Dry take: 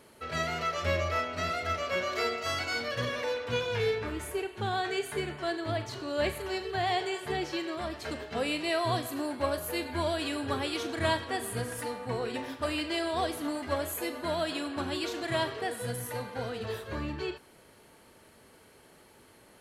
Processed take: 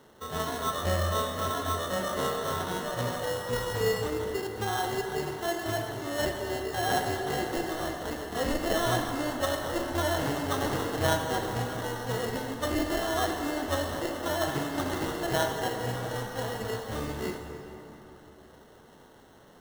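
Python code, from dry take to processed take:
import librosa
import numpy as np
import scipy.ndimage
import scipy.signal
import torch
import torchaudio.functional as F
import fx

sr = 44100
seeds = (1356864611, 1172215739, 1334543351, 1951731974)

y = fx.peak_eq(x, sr, hz=2600.0, db=fx.steps((0.0, -4.0), (6.89, 5.5)), octaves=0.82)
y = fx.sample_hold(y, sr, seeds[0], rate_hz=2400.0, jitter_pct=0)
y = fx.rev_plate(y, sr, seeds[1], rt60_s=3.7, hf_ratio=0.55, predelay_ms=0, drr_db=3.5)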